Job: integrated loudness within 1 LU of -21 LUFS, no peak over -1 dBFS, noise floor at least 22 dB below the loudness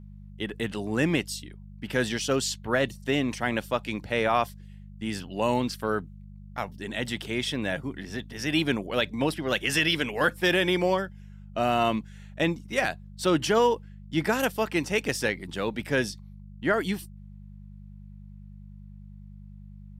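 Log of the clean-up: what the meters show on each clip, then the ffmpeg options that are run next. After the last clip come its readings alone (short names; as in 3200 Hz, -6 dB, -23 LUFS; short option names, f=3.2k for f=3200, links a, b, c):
hum 50 Hz; harmonics up to 200 Hz; hum level -42 dBFS; loudness -27.5 LUFS; peak -12.0 dBFS; loudness target -21.0 LUFS
-> -af "bandreject=f=50:t=h:w=4,bandreject=f=100:t=h:w=4,bandreject=f=150:t=h:w=4,bandreject=f=200:t=h:w=4"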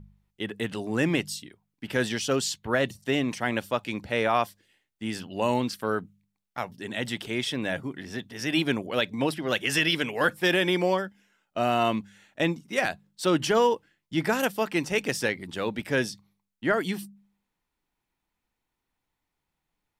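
hum none; loudness -27.5 LUFS; peak -11.5 dBFS; loudness target -21.0 LUFS
-> -af "volume=6.5dB"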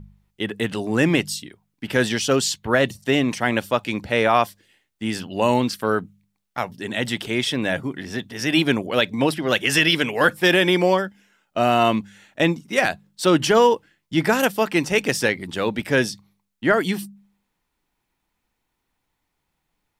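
loudness -21.0 LUFS; peak -5.0 dBFS; noise floor -77 dBFS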